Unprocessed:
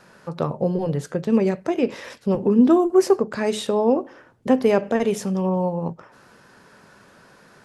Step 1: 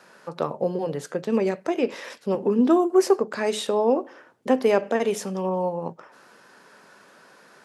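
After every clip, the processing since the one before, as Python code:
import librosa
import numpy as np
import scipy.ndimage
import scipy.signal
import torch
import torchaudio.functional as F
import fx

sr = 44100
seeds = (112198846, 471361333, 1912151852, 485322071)

y = scipy.signal.sosfilt(scipy.signal.bessel(2, 320.0, 'highpass', norm='mag', fs=sr, output='sos'), x)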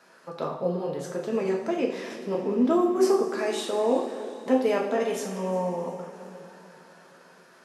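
y = fx.rev_double_slope(x, sr, seeds[0], early_s=0.54, late_s=3.9, knee_db=-15, drr_db=-1.5)
y = fx.echo_warbled(y, sr, ms=357, feedback_pct=46, rate_hz=2.8, cents=90, wet_db=-21.0)
y = y * 10.0 ** (-6.5 / 20.0)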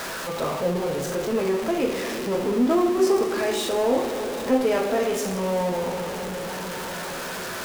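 y = x + 0.5 * 10.0 ** (-26.5 / 20.0) * np.sign(x)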